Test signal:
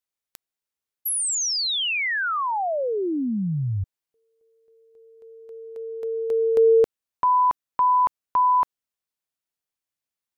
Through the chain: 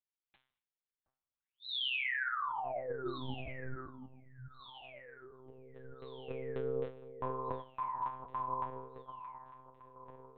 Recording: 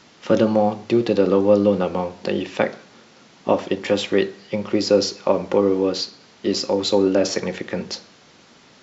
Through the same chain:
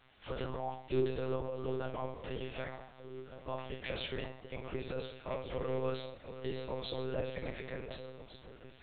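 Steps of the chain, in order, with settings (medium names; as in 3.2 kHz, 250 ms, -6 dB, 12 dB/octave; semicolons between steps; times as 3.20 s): bass shelf 270 Hz -11 dB; peak limiter -16 dBFS; feedback comb 120 Hz, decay 0.27 s, harmonics all, mix 90%; wow and flutter 27 cents; echo whose repeats swap between lows and highs 727 ms, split 1.2 kHz, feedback 64%, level -9.5 dB; gated-style reverb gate 250 ms falling, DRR 10 dB; monotone LPC vocoder at 8 kHz 130 Hz; trim -2.5 dB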